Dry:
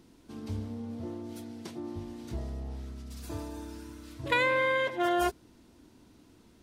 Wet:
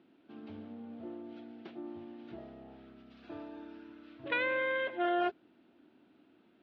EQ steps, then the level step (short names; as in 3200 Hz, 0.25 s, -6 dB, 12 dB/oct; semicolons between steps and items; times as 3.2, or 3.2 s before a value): air absorption 130 m; speaker cabinet 320–3200 Hz, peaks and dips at 470 Hz -7 dB, 1000 Hz -10 dB, 2000 Hz -5 dB; 0.0 dB